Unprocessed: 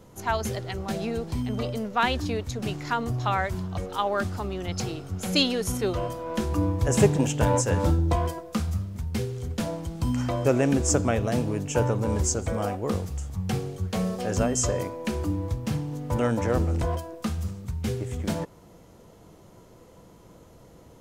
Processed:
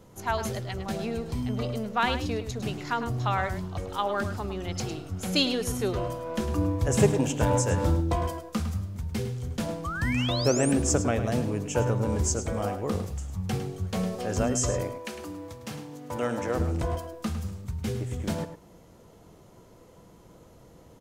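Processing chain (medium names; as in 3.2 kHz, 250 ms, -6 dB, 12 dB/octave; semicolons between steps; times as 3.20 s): 9.84–10.72 s: painted sound rise 1.1–10 kHz -32 dBFS; 14.97–16.58 s: high-pass 850 Hz -> 270 Hz 6 dB/octave; echo from a far wall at 18 m, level -10 dB; trim -2 dB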